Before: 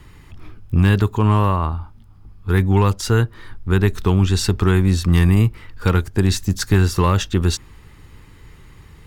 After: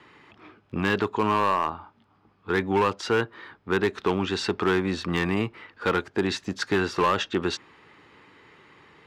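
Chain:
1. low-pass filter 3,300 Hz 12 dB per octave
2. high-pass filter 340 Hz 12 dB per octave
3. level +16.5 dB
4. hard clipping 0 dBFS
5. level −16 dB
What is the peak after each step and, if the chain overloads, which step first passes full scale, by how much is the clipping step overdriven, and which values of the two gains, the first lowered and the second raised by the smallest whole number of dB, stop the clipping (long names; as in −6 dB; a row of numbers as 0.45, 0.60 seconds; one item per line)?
−4.0, −8.0, +8.5, 0.0, −16.0 dBFS
step 3, 8.5 dB
step 3 +7.5 dB, step 5 −7 dB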